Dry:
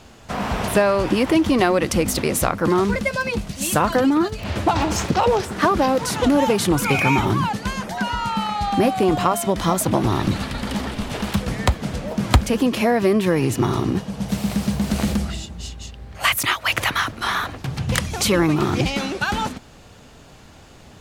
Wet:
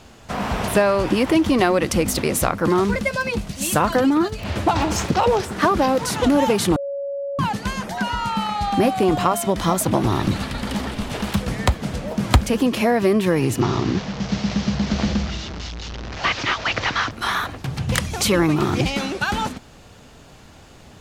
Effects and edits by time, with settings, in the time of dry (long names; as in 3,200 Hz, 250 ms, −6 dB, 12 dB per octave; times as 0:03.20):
0:06.76–0:07.39: beep over 560 Hz −24 dBFS
0:13.61–0:17.11: linear delta modulator 32 kbit/s, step −25 dBFS